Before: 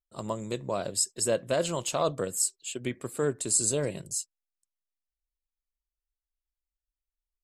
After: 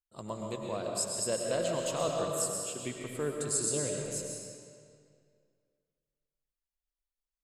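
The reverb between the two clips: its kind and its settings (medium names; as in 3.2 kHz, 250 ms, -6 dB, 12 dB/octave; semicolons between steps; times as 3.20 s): algorithmic reverb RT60 2.2 s, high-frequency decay 0.85×, pre-delay 75 ms, DRR 0 dB; trim -6.5 dB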